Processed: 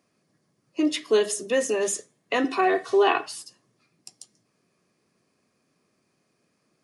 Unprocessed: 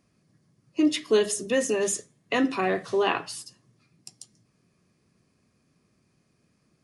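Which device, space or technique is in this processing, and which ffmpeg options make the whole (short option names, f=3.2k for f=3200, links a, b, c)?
filter by subtraction: -filter_complex "[0:a]asplit=2[a][b];[b]lowpass=530,volume=-1[c];[a][c]amix=inputs=2:normalize=0,asettb=1/sr,asplit=3[d][e][f];[d]atrim=end=2.444[g];[e]atrim=start=2.44:end=3.26,asetpts=PTS-STARTPTS,afade=t=in:d=0.004:c=qsin,afade=t=out:st=0.816:d=0.004:c=qsin,aecho=1:1:2.7:0.74,atrim=end_sample=36162[h];[f]atrim=start=3.256[i];[g][h]acrossfade=d=0.004:c1=hsin:c2=qsin[j];[j][i]acrossfade=d=0.004:c1=qsin:c2=hsin"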